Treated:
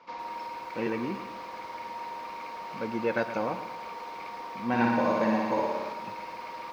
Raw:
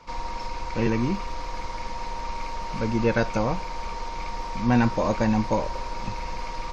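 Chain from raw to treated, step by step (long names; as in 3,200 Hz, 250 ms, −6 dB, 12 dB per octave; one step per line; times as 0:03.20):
band-pass filter 260–3,600 Hz
0:04.68–0:05.93: flutter between parallel walls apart 10.1 metres, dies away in 1.2 s
feedback echo at a low word length 113 ms, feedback 55%, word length 8 bits, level −12 dB
level −4 dB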